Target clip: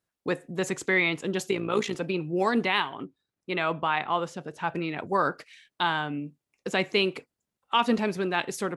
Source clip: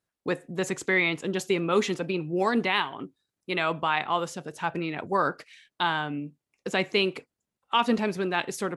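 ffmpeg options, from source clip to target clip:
-filter_complex "[0:a]asettb=1/sr,asplit=3[a][b][c];[a]atrim=end=1.514[d];[b]atrim=start=1.51:end=1.96,asetpts=PTS-STARTPTS,afade=t=in:d=0.004:c=qsin,afade=t=out:st=0.446:d=0.004:c=qsin,tremolo=f=57:d=0.667[e];[c]atrim=start=1.956[f];[d][e]acrossfade=d=0.004:c1=hsin:c2=qsin[g];[g][f]acrossfade=d=0.004:c1=qsin:c2=hsin,asettb=1/sr,asplit=3[h][i][j];[h]atrim=end=3.044[k];[i]atrim=start=3.04:end=4.68,asetpts=PTS-STARTPTS,afade=t=in:d=0.004:c=qsin,afade=t=out:st=1.636:d=0.004:c=qsin,highshelf=f=5.4k:g=-11[l];[j]atrim=start=4.676[m];[k][l]acrossfade=d=0.004:c1=hsin:c2=qsin[n];[n][m]acrossfade=d=0.004:c1=qsin:c2=hsin"

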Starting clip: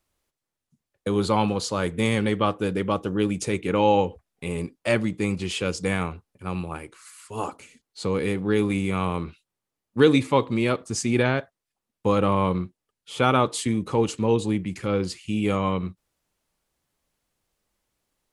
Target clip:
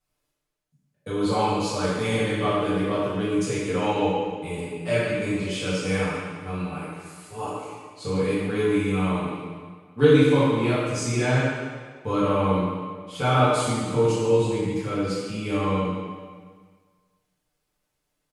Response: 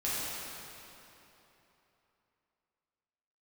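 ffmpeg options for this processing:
-filter_complex "[0:a]aecho=1:1:6.7:0.51[a];[1:a]atrim=start_sample=2205,asetrate=88200,aresample=44100[b];[a][b]afir=irnorm=-1:irlink=0,volume=-2.5dB"

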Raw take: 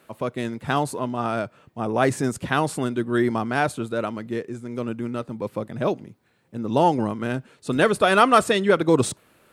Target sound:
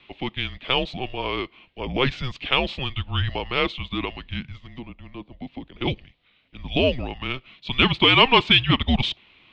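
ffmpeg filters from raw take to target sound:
-filter_complex "[0:a]highpass=f=280:t=q:w=0.5412,highpass=f=280:t=q:w=1.307,lowpass=f=3.5k:t=q:w=0.5176,lowpass=f=3.5k:t=q:w=0.7071,lowpass=f=3.5k:t=q:w=1.932,afreqshift=-260,aexciter=amount=11:drive=3.2:freq=2.3k,asettb=1/sr,asplit=3[a][b][c];[a]atrim=end=4.664[d];[b]atrim=start=4.66:end=5.81,asetpts=PTS-STARTPTS,afade=t=in:d=0.004:c=qsin,afade=t=out:st=1.146:d=0.004:c=qsin,acrossover=split=180|800[e][f][g];[e]acompressor=threshold=-41dB:ratio=4[h];[f]acompressor=threshold=-31dB:ratio=4[i];[g]acompressor=threshold=-48dB:ratio=4[j];[h][i][j]amix=inputs=3:normalize=0[k];[c]atrim=start=5.806[l];[d][k]acrossfade=d=0.004:c1=hsin:c2=qsin[m];[m][l]acrossfade=d=0.004:c1=qsin:c2=hsin,volume=-2dB"

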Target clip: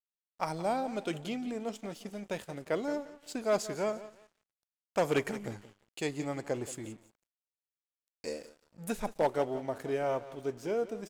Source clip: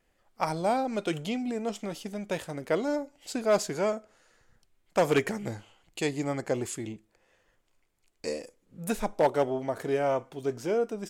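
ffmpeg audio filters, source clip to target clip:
-af "aecho=1:1:174|348|522:0.178|0.0658|0.0243,aeval=exprs='sgn(val(0))*max(abs(val(0))-0.00251,0)':c=same,volume=-4.5dB"

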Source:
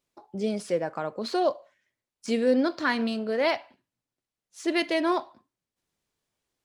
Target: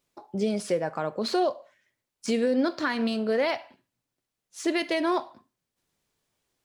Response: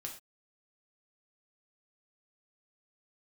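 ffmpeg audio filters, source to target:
-filter_complex "[0:a]alimiter=limit=-20.5dB:level=0:latency=1:release=256,asplit=2[a][b];[1:a]atrim=start_sample=2205,highshelf=f=9.2k:g=10[c];[b][c]afir=irnorm=-1:irlink=0,volume=-12.5dB[d];[a][d]amix=inputs=2:normalize=0,volume=3dB"

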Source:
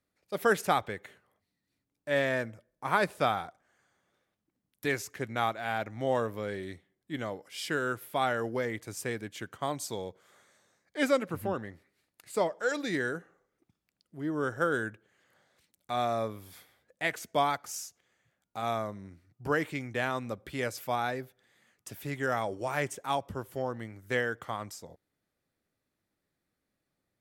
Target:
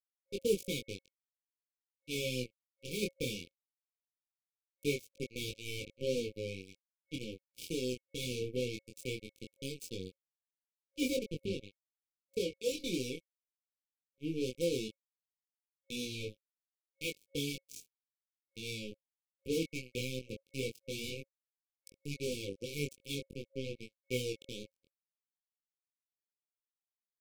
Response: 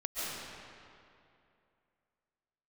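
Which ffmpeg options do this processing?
-af "acrusher=bits=4:mix=0:aa=0.5,flanger=delay=20:depth=4.2:speed=0.18,afftfilt=real='re*(1-between(b*sr/4096,540,2200))':imag='im*(1-between(b*sr/4096,540,2200))':win_size=4096:overlap=0.75"

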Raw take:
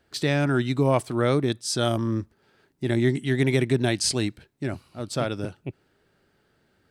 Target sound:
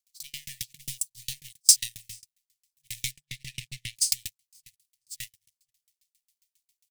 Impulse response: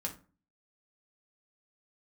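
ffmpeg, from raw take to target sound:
-filter_complex "[0:a]aeval=exprs='val(0)+0.5*0.0473*sgn(val(0))':c=same,aecho=1:1:500|1000|1500|2000|2500|3000:0.224|0.128|0.0727|0.0415|0.0236|0.0135,asplit=2[a][b];[b]acompressor=threshold=-31dB:ratio=12,volume=0.5dB[c];[a][c]amix=inputs=2:normalize=0,asettb=1/sr,asplit=3[d][e][f];[d]atrim=end=3.114[g];[e]atrim=start=3.11:end=3.96,asetpts=PTS-STARTPTS,afade=t=in:d=0.004:c=qsin,afade=t=out:st=0.846:d=0.004:c=qsin,aemphasis=mode=reproduction:type=75kf[h];[f]atrim=start=3.956[i];[g][h]acrossfade=d=0.004:c1=hsin:c2=qsin[j];[j][i]acrossfade=d=0.004:c1=qsin:c2=hsin,acrossover=split=210|4900[k][l][m];[l]aeval=exprs='abs(val(0))':c=same[n];[m]acontrast=84[o];[k][n][o]amix=inputs=3:normalize=0,agate=range=-47dB:threshold=-18dB:ratio=16:detection=peak,asettb=1/sr,asplit=3[p][q][r];[p]atrim=end=0.814[s];[q]atrim=start=0.81:end=1.32,asetpts=PTS-STARTPTS,afade=t=in:d=0.004:c=qsin,afade=t=out:st=0.506:d=0.004:c=qsin,equalizer=f=1.6k:w=1.3:g=-15[t];[r]atrim=start=1.316[u];[s][t]acrossfade=d=0.004:c1=hsin:c2=qsin[v];[v][u]acrossfade=d=0.004:c1=qsin:c2=hsin,afftfilt=real='re*(1-between(b*sr/4096,150,1700))':imag='im*(1-between(b*sr/4096,150,1700))':win_size=4096:overlap=0.75,aexciter=amount=11.2:drive=6.9:freq=2.1k,aeval=exprs='val(0)*pow(10,-38*if(lt(mod(7.4*n/s,1),2*abs(7.4)/1000),1-mod(7.4*n/s,1)/(2*abs(7.4)/1000),(mod(7.4*n/s,1)-2*abs(7.4)/1000)/(1-2*abs(7.4)/1000))/20)':c=same,volume=-15dB"

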